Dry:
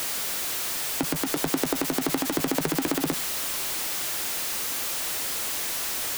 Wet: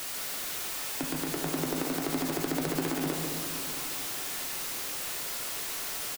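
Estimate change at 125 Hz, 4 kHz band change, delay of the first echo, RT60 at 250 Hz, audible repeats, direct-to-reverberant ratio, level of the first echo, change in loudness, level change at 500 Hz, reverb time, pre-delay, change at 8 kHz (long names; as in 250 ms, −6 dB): −1.0 dB, −5.5 dB, 144 ms, 3.1 s, 1, −0.5 dB, −7.0 dB, −5.5 dB, −4.0 dB, 2.8 s, 3 ms, −6.0 dB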